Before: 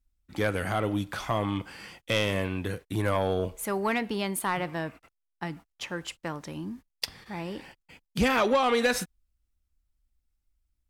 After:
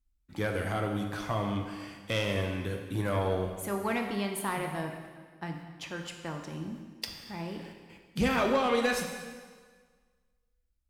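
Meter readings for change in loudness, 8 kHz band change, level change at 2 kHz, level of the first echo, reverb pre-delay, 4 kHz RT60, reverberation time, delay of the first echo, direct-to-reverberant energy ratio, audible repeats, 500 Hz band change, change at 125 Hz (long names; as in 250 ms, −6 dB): −3.0 dB, −4.0 dB, −3.5 dB, no echo audible, 4 ms, 1.5 s, 1.6 s, no echo audible, 3.0 dB, no echo audible, −3.0 dB, −1.0 dB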